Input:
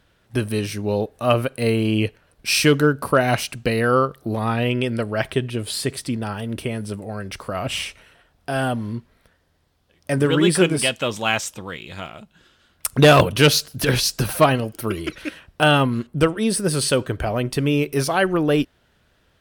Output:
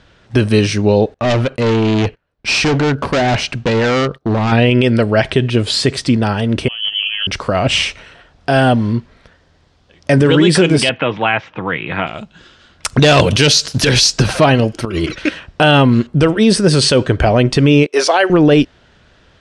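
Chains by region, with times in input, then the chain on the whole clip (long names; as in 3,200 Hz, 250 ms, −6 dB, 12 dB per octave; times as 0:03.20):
0:01.14–0:04.52: low-pass filter 3,100 Hz 6 dB per octave + gain into a clipping stage and back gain 23.5 dB + noise gate −48 dBFS, range −24 dB
0:06.68–0:07.27: running median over 15 samples + compressor whose output falls as the input rises −32 dBFS, ratio −0.5 + voice inversion scrambler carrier 3,200 Hz
0:10.89–0:12.07: loudspeaker in its box 130–2,400 Hz, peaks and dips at 220 Hz −7 dB, 390 Hz −5 dB, 570 Hz −6 dB + multiband upward and downward compressor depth 70%
0:12.99–0:14.13: high-shelf EQ 3,900 Hz +10.5 dB + leveller curve on the samples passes 1 + downward compressor 4 to 1, threshold −19 dBFS
0:14.85–0:15.26: downward expander −35 dBFS + compressor whose output falls as the input rises −31 dBFS
0:17.86–0:18.30: high-pass filter 400 Hz 24 dB per octave + noise gate −37 dBFS, range −15 dB
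whole clip: low-pass filter 7,000 Hz 24 dB per octave; dynamic equaliser 1,200 Hz, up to −5 dB, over −38 dBFS, Q 3; boost into a limiter +13 dB; level −1 dB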